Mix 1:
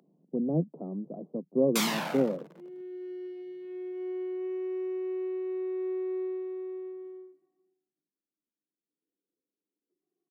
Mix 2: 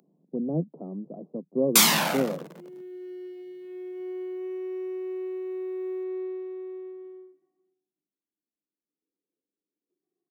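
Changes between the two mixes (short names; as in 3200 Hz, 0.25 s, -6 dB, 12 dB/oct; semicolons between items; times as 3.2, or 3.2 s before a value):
first sound +7.5 dB; master: add high shelf 5400 Hz +10 dB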